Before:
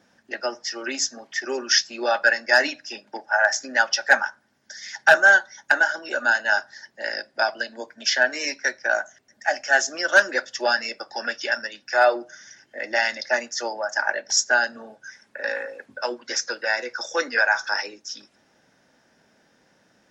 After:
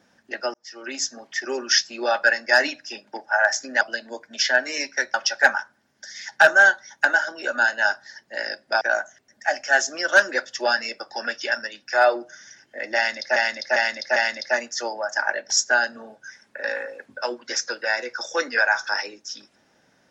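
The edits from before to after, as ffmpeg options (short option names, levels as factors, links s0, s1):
-filter_complex "[0:a]asplit=8[s0][s1][s2][s3][s4][s5][s6][s7];[s0]atrim=end=0.54,asetpts=PTS-STARTPTS,afade=t=out:st=0.536:d=0.004:c=hsin[s8];[s1]atrim=start=0.54:end=3.812,asetpts=PTS-STARTPTS,afade=t=in:d=0.81:c=qsin[s9];[s2]atrim=start=7.478:end=8.812[s10];[s3]atrim=start=3.808:end=7.482[s11];[s4]atrim=start=8.808:end=13.362[s12];[s5]atrim=start=12.958:end=13.362[s13];[s6]atrim=start=12.958:end=13.362[s14];[s7]atrim=start=12.958[s15];[s8][s9]concat=n=2:v=0:a=1[s16];[s16][s10]acrossfade=d=0.004:c1=hsin:c2=hsin[s17];[s17][s11]acrossfade=d=0.004:c1=hsin:c2=hsin[s18];[s18][s12]acrossfade=d=0.004:c1=hsin:c2=hsin[s19];[s19][s13]acrossfade=d=0.004:c1=hsin:c2=hsin[s20];[s20][s14]acrossfade=d=0.004:c1=hsin:c2=hsin[s21];[s21][s15]acrossfade=d=0.004:c1=hsin:c2=hsin"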